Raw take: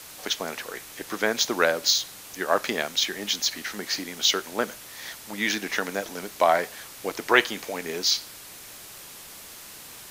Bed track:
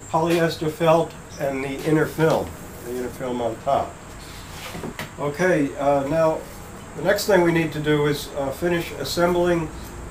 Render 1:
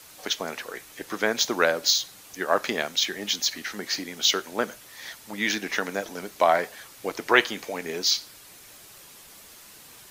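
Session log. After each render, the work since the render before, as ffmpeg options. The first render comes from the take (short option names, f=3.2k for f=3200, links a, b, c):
-af "afftdn=nr=6:nf=-44"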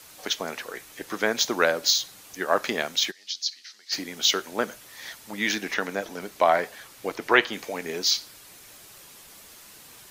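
-filter_complex "[0:a]asplit=3[a][b][c];[a]afade=t=out:st=3.1:d=0.02[d];[b]bandpass=f=4.7k:t=q:w=3.3,afade=t=in:st=3.1:d=0.02,afade=t=out:st=3.91:d=0.02[e];[c]afade=t=in:st=3.91:d=0.02[f];[d][e][f]amix=inputs=3:normalize=0,asettb=1/sr,asplit=3[g][h][i];[g]atrim=end=5.744[j];[h]atrim=start=5.74:end=7.53,asetpts=PTS-STARTPTS,afade=t=in:d=0.004:c=qsin,afade=t=out:st=1.786:d=0.004:c=qsin,acrossover=split=4400[k][l];[l]acompressor=threshold=-46dB:ratio=4:attack=1:release=60[m];[k][m]amix=inputs=2:normalize=0[n];[i]atrim=start=7.526[o];[j][n]acrossfade=d=0.004:c1=hsin:c2=qsin[p];[p][o]acrossfade=d=0.004:c1=qsin:c2=hsin"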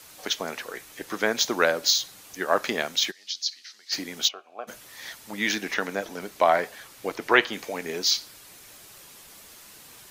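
-filter_complex "[0:a]asplit=3[a][b][c];[a]afade=t=out:st=4.27:d=0.02[d];[b]asplit=3[e][f][g];[e]bandpass=f=730:t=q:w=8,volume=0dB[h];[f]bandpass=f=1.09k:t=q:w=8,volume=-6dB[i];[g]bandpass=f=2.44k:t=q:w=8,volume=-9dB[j];[h][i][j]amix=inputs=3:normalize=0,afade=t=in:st=4.27:d=0.02,afade=t=out:st=4.67:d=0.02[k];[c]afade=t=in:st=4.67:d=0.02[l];[d][k][l]amix=inputs=3:normalize=0"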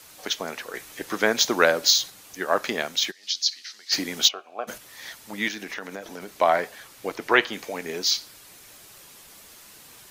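-filter_complex "[0:a]asettb=1/sr,asplit=3[a][b][c];[a]atrim=end=3.234[d];[b]atrim=start=3.23:end=4.78,asetpts=PTS-STARTPTS,afade=t=in:d=0.004:c=qsin,afade=t=out:st=1.546:d=0.004:c=qsin,acontrast=29[e];[c]atrim=start=4.776[f];[d][e]acrossfade=d=0.004:c1=hsin:c2=qsin[g];[g][f]acrossfade=d=0.004:c1=qsin:c2=hsin,asettb=1/sr,asplit=3[h][i][j];[h]atrim=end=5.484[k];[i]atrim=start=5.48:end=6.29,asetpts=PTS-STARTPTS,afade=t=in:d=0.004:c=qsin,afade=t=out:st=0.806:d=0.004:c=qsin,acompressor=threshold=-32dB:ratio=3:attack=3.2:release=140:knee=1:detection=peak[l];[j]atrim=start=6.286[m];[k][l]acrossfade=d=0.004:c1=hsin:c2=qsin[n];[n][m]acrossfade=d=0.004:c1=qsin:c2=hsin,asplit=3[o][p][q];[o]atrim=end=0.742[r];[p]atrim=start=0.738:end=2.102,asetpts=PTS-STARTPTS,volume=3dB[s];[q]atrim=start=2.098[t];[r][s]acrossfade=d=0.004:c1=hsin:c2=hsin[u];[u][t]acrossfade=d=0.004:c1=hsin:c2=hsin"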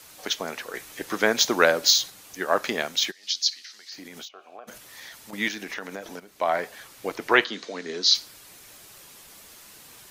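-filter_complex "[0:a]asettb=1/sr,asplit=3[a][b][c];[a]atrim=end=3.554[d];[b]atrim=start=3.55:end=5.33,asetpts=PTS-STARTPTS,afade=t=in:d=0.004:c=qsin,afade=t=out:st=1.776:d=0.004:c=qsin,acompressor=threshold=-38dB:ratio=8:attack=3.2:release=140:knee=1:detection=peak[e];[c]atrim=start=5.326[f];[d][e]acrossfade=d=0.004:c1=hsin:c2=qsin[g];[g][f]acrossfade=d=0.004:c1=qsin:c2=hsin,asettb=1/sr,asplit=3[h][i][j];[h]atrim=end=7.444[k];[i]atrim=start=7.44:end=8.15,asetpts=PTS-STARTPTS,afade=t=in:d=0.004:c=qsin,afade=t=out:st=0.706:d=0.004:c=qsin,highpass=f=180:w=0.5412,highpass=f=180:w=1.3066,equalizer=f=570:t=q:w=4:g=-4,equalizer=f=830:t=q:w=4:g=-9,equalizer=f=2.4k:t=q:w=4:g=-7,equalizer=f=4k:t=q:w=4:g=8,lowpass=f=6.5k:w=0.5412,lowpass=f=6.5k:w=1.3066[l];[j]atrim=start=8.146[m];[k][l]acrossfade=d=0.004:c1=hsin:c2=qsin[n];[n][m]acrossfade=d=0.004:c1=qsin:c2=hsin,asplit=2[o][p];[o]atrim=end=6.2,asetpts=PTS-STARTPTS,afade=t=out:st=6.196:d=0.004:c=hsin:silence=0.223872[q];[p]atrim=start=6.2,asetpts=PTS-STARTPTS,afade=t=in:d=0.58:silence=0.223872[r];[q][r]concat=n=2:v=0:a=1"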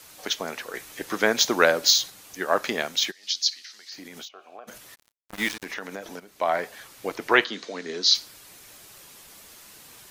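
-filter_complex "[0:a]asplit=3[a][b][c];[a]afade=t=out:st=4.94:d=0.02[d];[b]acrusher=bits=4:mix=0:aa=0.5,afade=t=in:st=4.94:d=0.02,afade=t=out:st=5.64:d=0.02[e];[c]afade=t=in:st=5.64:d=0.02[f];[d][e][f]amix=inputs=3:normalize=0"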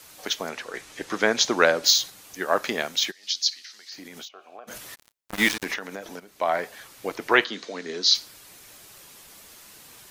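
-filter_complex "[0:a]asettb=1/sr,asplit=3[a][b][c];[a]atrim=end=0.494[d];[b]atrim=start=0.49:end=1.84,asetpts=PTS-STARTPTS,afade=t=in:d=0.004:c=qsin,afade=t=out:st=1.346:d=0.004:c=qsin,lowpass=8.4k[e];[c]atrim=start=1.836[f];[d][e]acrossfade=d=0.004:c1=hsin:c2=qsin[g];[g][f]acrossfade=d=0.004:c1=qsin:c2=hsin,asettb=1/sr,asplit=3[h][i][j];[h]atrim=end=4.704[k];[i]atrim=start=4.7:end=5.76,asetpts=PTS-STARTPTS,afade=t=in:d=0.004:c=qsin,afade=t=out:st=1.056:d=0.004:c=qsin,acontrast=50[l];[j]atrim=start=5.756[m];[k][l]acrossfade=d=0.004:c1=hsin:c2=qsin[n];[n][m]acrossfade=d=0.004:c1=qsin:c2=hsin"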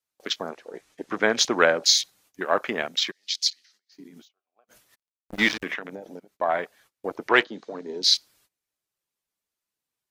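-af "afwtdn=0.02,agate=range=-23dB:threshold=-57dB:ratio=16:detection=peak"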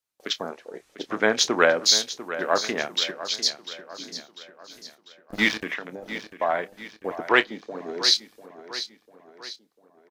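-filter_complex "[0:a]asplit=2[a][b];[b]adelay=28,volume=-14dB[c];[a][c]amix=inputs=2:normalize=0,aecho=1:1:696|1392|2088|2784|3480:0.224|0.105|0.0495|0.0232|0.0109"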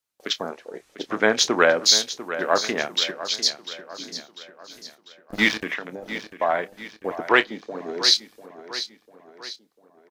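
-af "volume=2dB,alimiter=limit=-3dB:level=0:latency=1"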